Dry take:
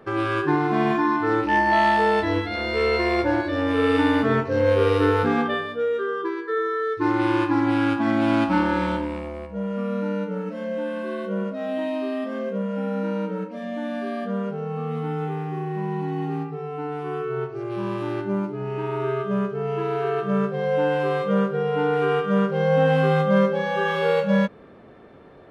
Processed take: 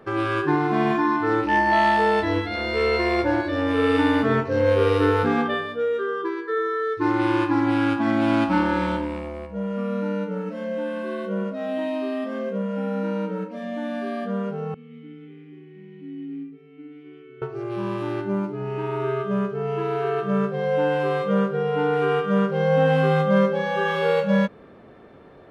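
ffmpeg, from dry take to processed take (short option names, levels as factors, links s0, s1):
-filter_complex "[0:a]asettb=1/sr,asplit=3[s0][s1][s2];[s0]atrim=end=14.744[s3];[s1]atrim=start=14.74:end=17.42,asetpts=PTS-STARTPTS,afade=t=in:d=0.004:c=qsin,afade=t=out:st=2.676:d=0.004:c=qsin,asplit=3[s4][s5][s6];[s4]bandpass=f=270:t=q:w=8,volume=1[s7];[s5]bandpass=f=2290:t=q:w=8,volume=0.501[s8];[s6]bandpass=f=3010:t=q:w=8,volume=0.355[s9];[s7][s8][s9]amix=inputs=3:normalize=0[s10];[s2]atrim=start=17.416[s11];[s3][s10]acrossfade=d=0.004:c1=hsin:c2=qsin[s12];[s12][s11]acrossfade=d=0.004:c1=qsin:c2=hsin"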